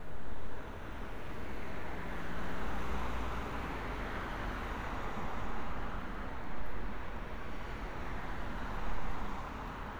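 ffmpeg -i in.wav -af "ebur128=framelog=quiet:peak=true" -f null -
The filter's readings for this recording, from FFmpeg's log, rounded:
Integrated loudness:
  I:         -42.2 LUFS
  Threshold: -52.1 LUFS
Loudness range:
  LRA:         3.0 LU
  Threshold: -61.7 LUFS
  LRA low:   -43.3 LUFS
  LRA high:  -40.3 LUFS
True peak:
  Peak:      -22.1 dBFS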